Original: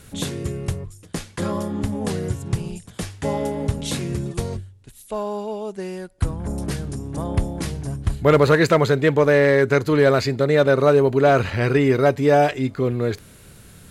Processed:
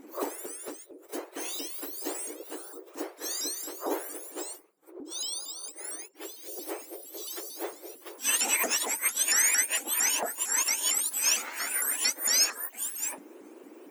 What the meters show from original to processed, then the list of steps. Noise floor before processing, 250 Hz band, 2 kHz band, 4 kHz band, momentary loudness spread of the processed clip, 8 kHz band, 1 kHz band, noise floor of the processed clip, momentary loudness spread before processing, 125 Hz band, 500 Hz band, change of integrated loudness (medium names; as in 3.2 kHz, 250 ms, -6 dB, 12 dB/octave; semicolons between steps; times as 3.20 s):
-47 dBFS, -20.5 dB, -8.0 dB, +1.5 dB, 17 LU, +12.5 dB, -14.0 dB, -54 dBFS, 15 LU, under -40 dB, -22.5 dB, -7.5 dB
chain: spectrum inverted on a logarithmic axis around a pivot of 1.9 kHz; pre-echo 43 ms -15 dB; vibrato with a chosen wave saw up 4.4 Hz, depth 250 cents; trim -5 dB